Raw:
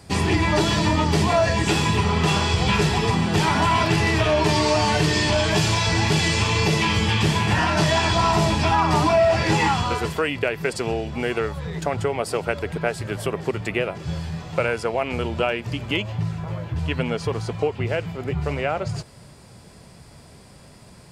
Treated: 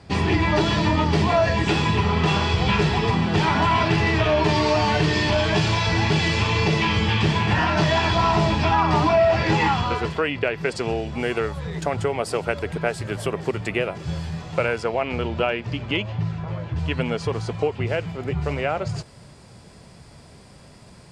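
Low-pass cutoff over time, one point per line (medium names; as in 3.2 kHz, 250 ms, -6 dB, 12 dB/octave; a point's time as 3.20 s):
10.35 s 4.4 kHz
11.23 s 11 kHz
14.39 s 11 kHz
15.17 s 4.8 kHz
16.46 s 4.8 kHz
17.03 s 8.8 kHz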